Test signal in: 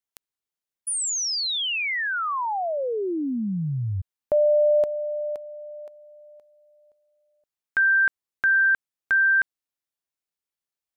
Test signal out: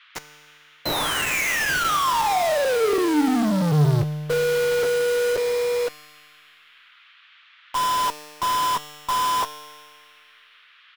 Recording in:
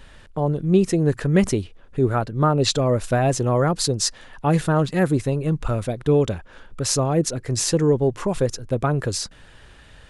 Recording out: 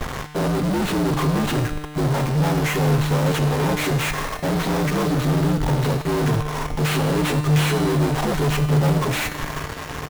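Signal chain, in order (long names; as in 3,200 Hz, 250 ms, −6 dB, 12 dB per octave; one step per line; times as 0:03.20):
partials spread apart or drawn together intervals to 76%
comb filter 7.4 ms, depth 42%
reversed playback
downward compressor 6 to 1, threshold −26 dBFS
reversed playback
fuzz pedal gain 55 dB, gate −47 dBFS
in parallel at +1.5 dB: sample-rate reduction 4,500 Hz, jitter 20%
on the sum: tuned comb filter 150 Hz, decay 1.9 s, mix 80%
noise in a band 1,200–3,500 Hz −53 dBFS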